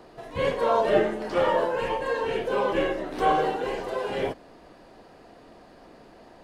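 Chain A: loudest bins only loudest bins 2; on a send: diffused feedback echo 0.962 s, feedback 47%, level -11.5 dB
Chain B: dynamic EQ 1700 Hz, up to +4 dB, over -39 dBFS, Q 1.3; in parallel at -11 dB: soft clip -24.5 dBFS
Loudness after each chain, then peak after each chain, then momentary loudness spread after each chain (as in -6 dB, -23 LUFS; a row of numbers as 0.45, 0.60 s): -30.5, -24.0 LUFS; -16.5, -7.0 dBFS; 20, 7 LU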